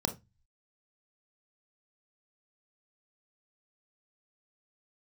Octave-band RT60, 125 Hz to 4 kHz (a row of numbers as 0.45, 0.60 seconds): 0.60, 0.30, 0.20, 0.20, 0.20, 0.20 seconds